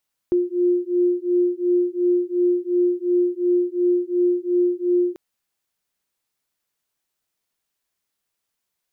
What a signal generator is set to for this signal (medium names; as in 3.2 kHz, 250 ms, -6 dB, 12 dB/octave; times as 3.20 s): beating tones 353 Hz, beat 2.8 Hz, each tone -20 dBFS 4.84 s